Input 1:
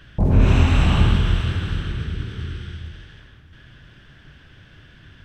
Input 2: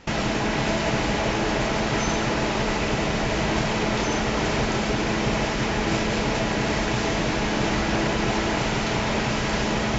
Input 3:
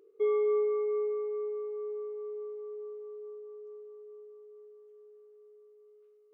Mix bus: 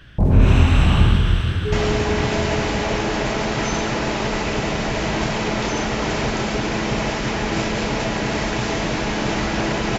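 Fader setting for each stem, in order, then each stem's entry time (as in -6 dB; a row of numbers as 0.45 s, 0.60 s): +1.5 dB, +1.5 dB, +1.5 dB; 0.00 s, 1.65 s, 1.45 s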